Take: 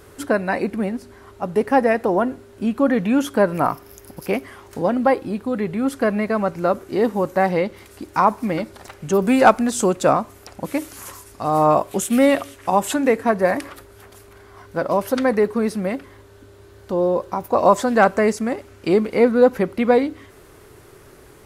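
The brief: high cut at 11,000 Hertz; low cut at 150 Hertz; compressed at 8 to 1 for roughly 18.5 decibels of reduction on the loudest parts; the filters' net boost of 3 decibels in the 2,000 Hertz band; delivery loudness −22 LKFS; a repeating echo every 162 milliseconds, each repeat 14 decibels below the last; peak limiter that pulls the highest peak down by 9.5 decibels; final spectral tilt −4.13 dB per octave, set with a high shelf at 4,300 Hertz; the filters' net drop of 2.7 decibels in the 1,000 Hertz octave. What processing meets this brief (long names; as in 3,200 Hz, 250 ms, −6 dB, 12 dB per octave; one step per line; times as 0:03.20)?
high-pass filter 150 Hz
low-pass filter 11,000 Hz
parametric band 1,000 Hz −5 dB
parametric band 2,000 Hz +4 dB
high-shelf EQ 4,300 Hz +8.5 dB
downward compressor 8 to 1, threshold −29 dBFS
brickwall limiter −23.5 dBFS
repeating echo 162 ms, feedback 20%, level −14 dB
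level +13 dB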